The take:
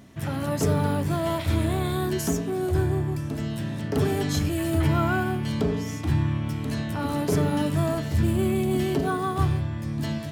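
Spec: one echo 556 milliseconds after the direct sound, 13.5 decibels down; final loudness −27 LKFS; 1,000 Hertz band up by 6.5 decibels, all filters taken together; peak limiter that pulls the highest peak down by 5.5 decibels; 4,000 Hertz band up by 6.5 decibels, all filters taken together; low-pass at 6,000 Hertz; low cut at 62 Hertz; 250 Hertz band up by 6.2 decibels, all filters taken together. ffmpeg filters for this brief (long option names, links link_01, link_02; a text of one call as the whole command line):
ffmpeg -i in.wav -af "highpass=62,lowpass=6000,equalizer=frequency=250:width_type=o:gain=8,equalizer=frequency=1000:width_type=o:gain=7.5,equalizer=frequency=4000:width_type=o:gain=8.5,alimiter=limit=-12.5dB:level=0:latency=1,aecho=1:1:556:0.211,volume=-4.5dB" out.wav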